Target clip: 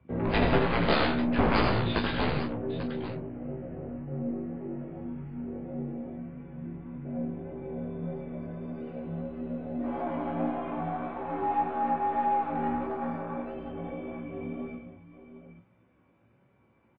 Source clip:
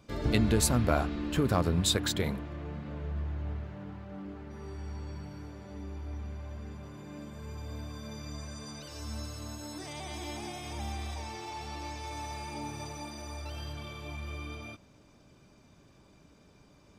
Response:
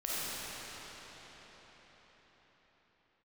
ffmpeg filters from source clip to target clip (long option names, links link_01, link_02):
-filter_complex "[0:a]afwtdn=0.01,asplit=2[link_01][link_02];[link_02]acompressor=threshold=-35dB:ratio=6,volume=-2dB[link_03];[link_01][link_03]amix=inputs=2:normalize=0,highpass=frequency=150:width_type=q:width=0.5412,highpass=frequency=150:width_type=q:width=1.307,lowpass=frequency=2700:width_type=q:width=0.5176,lowpass=frequency=2700:width_type=q:width=0.7071,lowpass=frequency=2700:width_type=q:width=1.932,afreqshift=-53,aeval=exprs='0.224*(cos(1*acos(clip(val(0)/0.224,-1,1)))-cos(1*PI/2))+0.0141*(cos(4*acos(clip(val(0)/0.224,-1,1)))-cos(4*PI/2))+0.0158*(cos(5*acos(clip(val(0)/0.224,-1,1)))-cos(5*PI/2))+0.112*(cos(7*acos(clip(val(0)/0.224,-1,1)))-cos(7*PI/2))+0.00447*(cos(8*acos(clip(val(0)/0.224,-1,1)))-cos(8*PI/2))':channel_layout=same,asplit=2[link_04][link_05];[link_05]adelay=28,volume=-8dB[link_06];[link_04][link_06]amix=inputs=2:normalize=0,asplit=2[link_07][link_08];[link_08]aecho=0:1:80|125|172|841:0.562|0.376|0.168|0.251[link_09];[link_07][link_09]amix=inputs=2:normalize=0,flanger=delay=15.5:depth=2.5:speed=1.7,volume=1.5dB" -ar 11025 -c:a libmp3lame -b:a 24k